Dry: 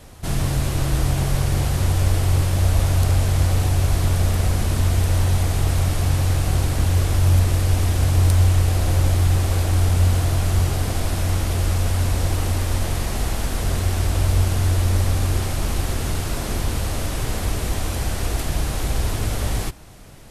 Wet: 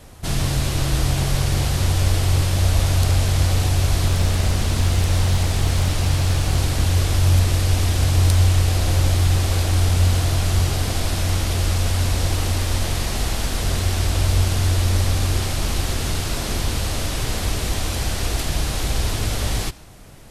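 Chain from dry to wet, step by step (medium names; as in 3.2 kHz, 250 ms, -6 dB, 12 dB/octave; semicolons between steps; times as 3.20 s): dynamic bell 4.2 kHz, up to +6 dB, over -46 dBFS, Q 0.7; 4.08–6.57 s: loudspeaker Doppler distortion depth 0.43 ms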